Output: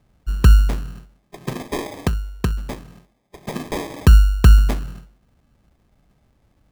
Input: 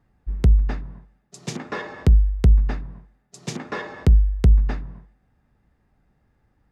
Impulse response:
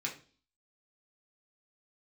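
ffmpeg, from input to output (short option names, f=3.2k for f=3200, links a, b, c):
-filter_complex "[0:a]asettb=1/sr,asplit=3[a][b][c];[a]atrim=end=1.544[d];[b]atrim=start=1.54:end=3.54,asetpts=PTS-STARTPTS,afade=t=in:d=0.004:c=qsin,afade=t=out:st=1.996:d=0.004:c=qsin,highpass=f=270:p=1[e];[c]atrim=start=3.536[f];[d][e]acrossfade=d=0.004:c1=hsin:c2=qsin[g];[g][f]acrossfade=d=0.004:c1=qsin:c2=hsin,acrusher=samples=31:mix=1:aa=0.000001,volume=4.5dB"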